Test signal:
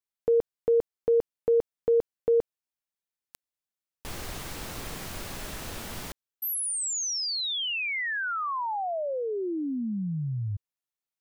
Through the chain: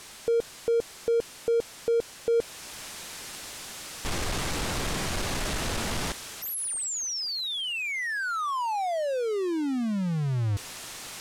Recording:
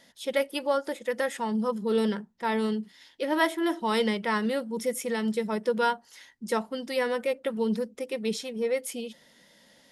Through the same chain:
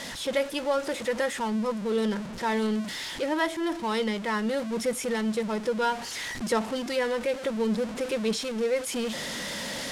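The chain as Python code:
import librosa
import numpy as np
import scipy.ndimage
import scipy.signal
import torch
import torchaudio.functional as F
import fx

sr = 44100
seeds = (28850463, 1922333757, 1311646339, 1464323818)

y = x + 0.5 * 10.0 ** (-30.5 / 20.0) * np.sign(x)
y = scipy.signal.sosfilt(scipy.signal.butter(2, 9300.0, 'lowpass', fs=sr, output='sos'), y)
y = fx.rider(y, sr, range_db=4, speed_s=0.5)
y = y * 10.0 ** (-1.5 / 20.0)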